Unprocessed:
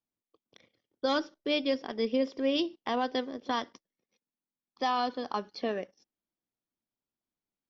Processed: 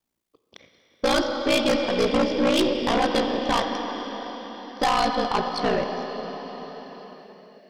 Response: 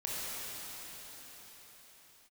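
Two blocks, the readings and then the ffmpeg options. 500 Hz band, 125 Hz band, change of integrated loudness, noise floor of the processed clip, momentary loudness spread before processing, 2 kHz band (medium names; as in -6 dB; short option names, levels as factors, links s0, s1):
+9.0 dB, no reading, +8.0 dB, -74 dBFS, 6 LU, +10.5 dB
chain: -filter_complex "[0:a]aeval=exprs='val(0)*sin(2*PI*29*n/s)':c=same,asplit=2[s0][s1];[1:a]atrim=start_sample=2205[s2];[s1][s2]afir=irnorm=-1:irlink=0,volume=0.376[s3];[s0][s3]amix=inputs=2:normalize=0,aeval=exprs='0.168*(cos(1*acos(clip(val(0)/0.168,-1,1)))-cos(1*PI/2))+0.0168*(cos(6*acos(clip(val(0)/0.168,-1,1)))-cos(6*PI/2))':c=same,aeval=exprs='0.2*sin(PI/2*2.51*val(0)/0.2)':c=same"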